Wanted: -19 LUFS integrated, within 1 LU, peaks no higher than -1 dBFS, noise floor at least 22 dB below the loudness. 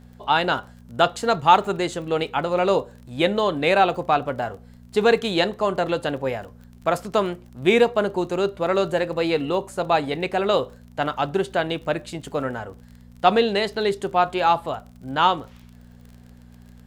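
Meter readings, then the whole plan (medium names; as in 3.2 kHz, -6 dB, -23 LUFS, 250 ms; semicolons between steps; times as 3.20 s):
tick rate 32 per s; hum 60 Hz; highest harmonic 240 Hz; hum level -46 dBFS; loudness -22.5 LUFS; peak level -2.5 dBFS; loudness target -19.0 LUFS
-> de-click; de-hum 60 Hz, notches 4; trim +3.5 dB; peak limiter -1 dBFS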